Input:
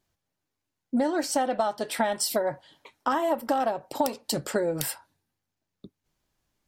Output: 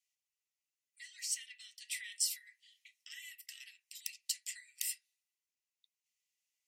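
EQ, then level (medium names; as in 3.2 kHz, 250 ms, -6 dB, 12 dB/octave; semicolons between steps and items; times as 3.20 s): rippled Chebyshev high-pass 1.9 kHz, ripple 6 dB; -3.0 dB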